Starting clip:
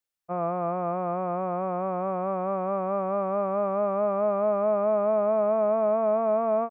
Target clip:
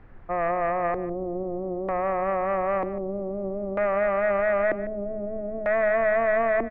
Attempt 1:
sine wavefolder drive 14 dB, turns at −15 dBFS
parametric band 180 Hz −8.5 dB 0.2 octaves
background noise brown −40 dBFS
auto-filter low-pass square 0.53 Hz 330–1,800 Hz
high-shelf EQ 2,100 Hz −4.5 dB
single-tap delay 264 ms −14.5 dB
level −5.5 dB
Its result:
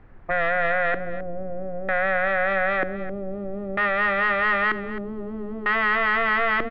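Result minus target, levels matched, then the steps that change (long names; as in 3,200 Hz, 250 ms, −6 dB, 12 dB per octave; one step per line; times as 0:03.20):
echo 113 ms late; sine wavefolder: distortion +22 dB
change: sine wavefolder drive 6 dB, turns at −15 dBFS
change: single-tap delay 151 ms −14.5 dB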